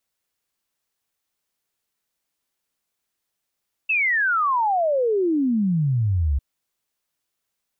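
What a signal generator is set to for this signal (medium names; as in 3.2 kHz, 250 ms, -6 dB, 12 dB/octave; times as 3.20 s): log sweep 2.7 kHz -> 65 Hz 2.50 s -17.5 dBFS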